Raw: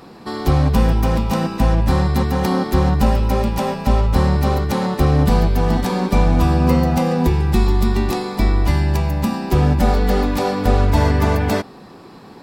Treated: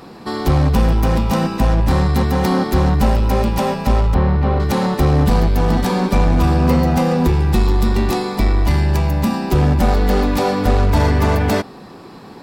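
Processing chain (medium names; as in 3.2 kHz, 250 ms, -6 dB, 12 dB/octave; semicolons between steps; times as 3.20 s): in parallel at -8 dB: wavefolder -15.5 dBFS; 4.14–4.60 s: on the sum: distance through air 340 m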